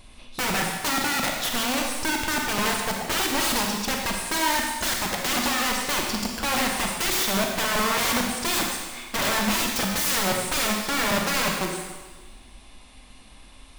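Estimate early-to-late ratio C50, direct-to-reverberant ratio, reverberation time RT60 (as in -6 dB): 2.0 dB, 0.5 dB, 1.3 s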